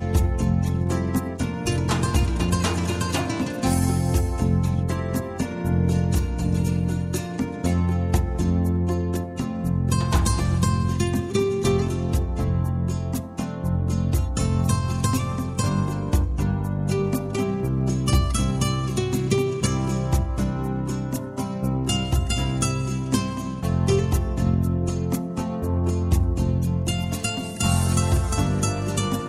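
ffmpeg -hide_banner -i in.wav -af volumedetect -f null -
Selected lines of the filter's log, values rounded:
mean_volume: -22.5 dB
max_volume: -7.1 dB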